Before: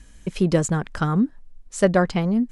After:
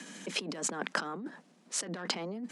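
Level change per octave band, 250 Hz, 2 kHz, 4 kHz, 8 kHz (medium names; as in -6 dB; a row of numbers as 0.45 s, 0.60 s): -19.5 dB, -7.0 dB, +1.0 dB, -2.0 dB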